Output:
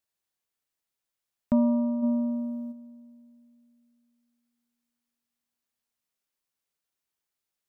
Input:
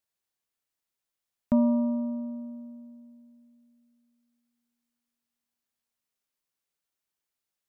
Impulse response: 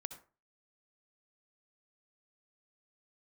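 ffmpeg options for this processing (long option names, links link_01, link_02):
-filter_complex "[0:a]asplit=3[link_01][link_02][link_03];[link_01]afade=type=out:start_time=2.02:duration=0.02[link_04];[link_02]acontrast=78,afade=type=in:start_time=2.02:duration=0.02,afade=type=out:start_time=2.71:duration=0.02[link_05];[link_03]afade=type=in:start_time=2.71:duration=0.02[link_06];[link_04][link_05][link_06]amix=inputs=3:normalize=0"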